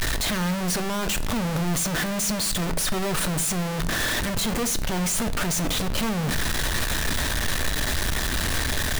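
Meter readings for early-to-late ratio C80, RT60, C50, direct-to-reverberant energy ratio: 20.0 dB, 0.55 s, 16.5 dB, 11.0 dB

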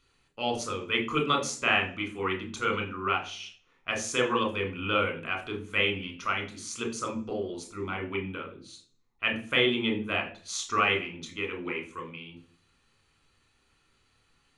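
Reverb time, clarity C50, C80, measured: 0.45 s, 11.0 dB, 15.5 dB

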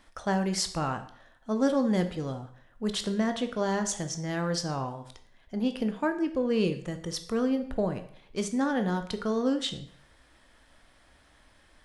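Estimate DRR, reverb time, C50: 7.5 dB, 0.60 s, 11.5 dB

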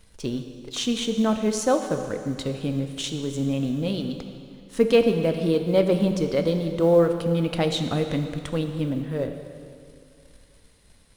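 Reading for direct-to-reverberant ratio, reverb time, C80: 6.0 dB, 2.4 s, 8.5 dB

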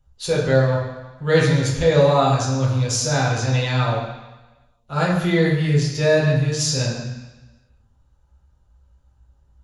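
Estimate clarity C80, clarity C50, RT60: 5.0 dB, 3.0 dB, 1.1 s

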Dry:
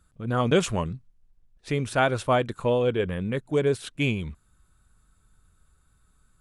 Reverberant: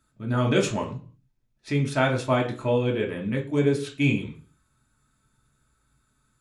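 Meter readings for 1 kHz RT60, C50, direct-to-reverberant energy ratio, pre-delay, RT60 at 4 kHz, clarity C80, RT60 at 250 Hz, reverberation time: 0.40 s, 11.5 dB, 0.0 dB, 3 ms, 0.45 s, 16.5 dB, 0.50 s, 0.40 s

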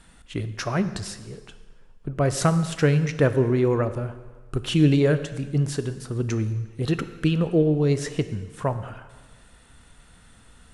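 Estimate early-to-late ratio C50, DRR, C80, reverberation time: 12.0 dB, 10.5 dB, 13.0 dB, 1.4 s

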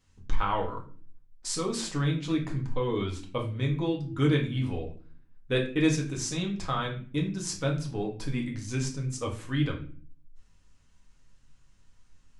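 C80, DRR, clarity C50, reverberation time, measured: 14.0 dB, −0.5 dB, 9.5 dB, 0.45 s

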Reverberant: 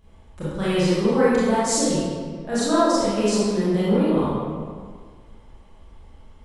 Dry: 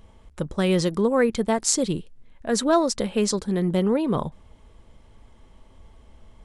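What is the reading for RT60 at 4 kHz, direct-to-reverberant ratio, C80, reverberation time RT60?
1.2 s, −11.0 dB, −1.0 dB, 1.8 s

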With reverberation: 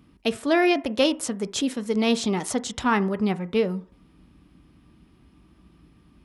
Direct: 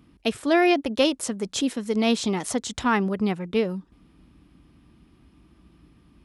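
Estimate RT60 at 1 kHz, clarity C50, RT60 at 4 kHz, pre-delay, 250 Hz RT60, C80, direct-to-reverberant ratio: 0.55 s, 19.5 dB, 0.45 s, 3 ms, 0.35 s, 24.5 dB, 11.5 dB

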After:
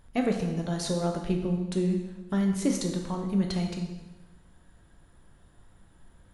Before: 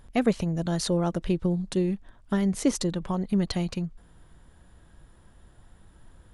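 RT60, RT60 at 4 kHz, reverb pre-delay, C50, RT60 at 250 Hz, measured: 1.1 s, 1.0 s, 4 ms, 5.0 dB, 1.1 s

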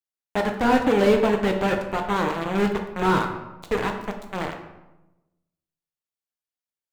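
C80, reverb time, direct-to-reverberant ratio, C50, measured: 9.5 dB, 1.0 s, 3.0 dB, 7.0 dB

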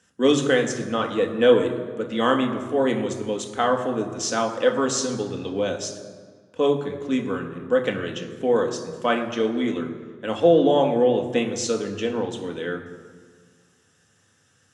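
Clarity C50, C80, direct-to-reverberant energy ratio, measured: 9.0 dB, 10.0 dB, 2.5 dB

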